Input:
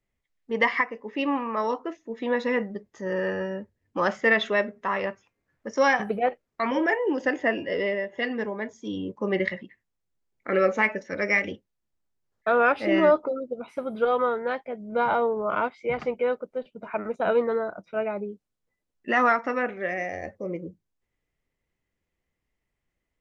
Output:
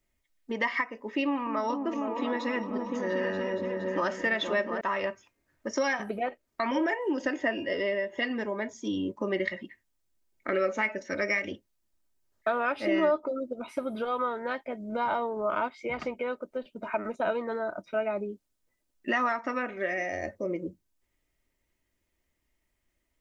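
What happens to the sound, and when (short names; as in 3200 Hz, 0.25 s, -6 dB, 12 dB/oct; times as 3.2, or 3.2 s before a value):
1.23–4.81 repeats that get brighter 0.233 s, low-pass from 200 Hz, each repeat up 2 oct, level -3 dB
whole clip: compressor 2.5:1, threshold -31 dBFS; high shelf 4600 Hz +7 dB; comb 3.2 ms, depth 41%; gain +1.5 dB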